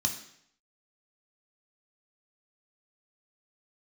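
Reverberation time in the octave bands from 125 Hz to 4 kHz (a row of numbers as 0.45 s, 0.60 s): 0.70 s, 0.70 s, 0.70 s, 0.65 s, 0.70 s, 0.65 s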